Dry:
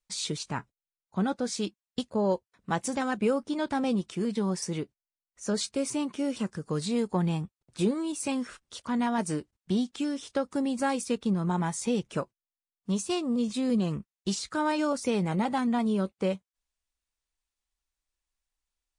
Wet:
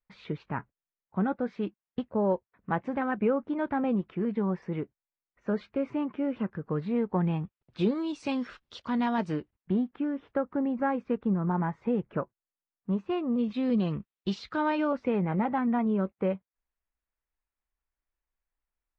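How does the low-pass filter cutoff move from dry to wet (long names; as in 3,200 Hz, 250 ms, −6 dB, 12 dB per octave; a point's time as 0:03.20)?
low-pass filter 24 dB per octave
0:07.13 2,200 Hz
0:07.95 4,400 Hz
0:09.13 4,400 Hz
0:09.84 1,900 Hz
0:12.93 1,900 Hz
0:13.78 3,700 Hz
0:14.58 3,700 Hz
0:15.13 2,200 Hz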